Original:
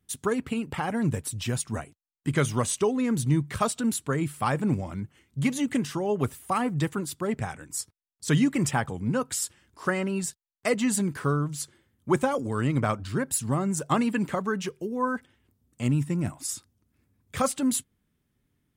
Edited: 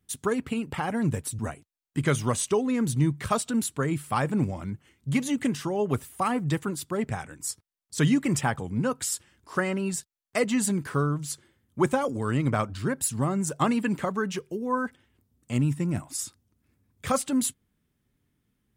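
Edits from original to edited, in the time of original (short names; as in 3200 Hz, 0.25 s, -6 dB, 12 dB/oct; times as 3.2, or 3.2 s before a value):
1.39–1.69 cut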